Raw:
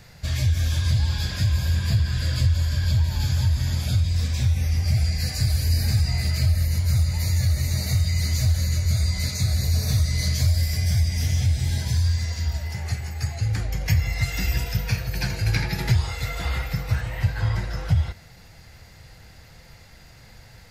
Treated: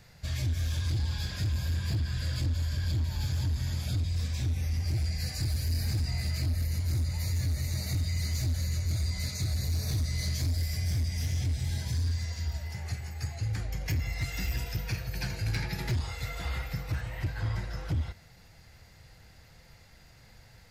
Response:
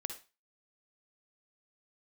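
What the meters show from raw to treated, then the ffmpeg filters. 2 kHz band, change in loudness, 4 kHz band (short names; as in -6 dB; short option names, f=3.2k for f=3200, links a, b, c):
-8.0 dB, -8.5 dB, -8.0 dB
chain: -af "volume=17.5dB,asoftclip=hard,volume=-17.5dB,volume=-7.5dB"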